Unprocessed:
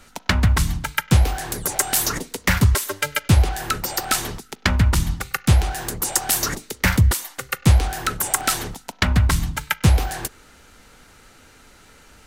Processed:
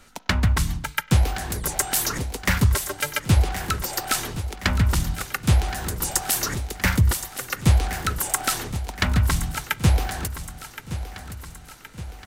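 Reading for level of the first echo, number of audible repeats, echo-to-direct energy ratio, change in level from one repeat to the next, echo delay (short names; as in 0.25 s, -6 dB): -12.5 dB, 5, -11.0 dB, -5.5 dB, 1.07 s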